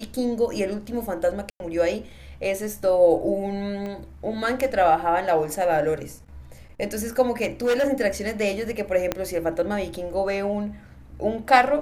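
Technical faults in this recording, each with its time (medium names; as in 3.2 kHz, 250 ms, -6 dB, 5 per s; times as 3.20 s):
1.50–1.60 s: dropout 101 ms
3.86 s: pop -22 dBFS
7.41–7.89 s: clipped -17.5 dBFS
9.12 s: pop -9 dBFS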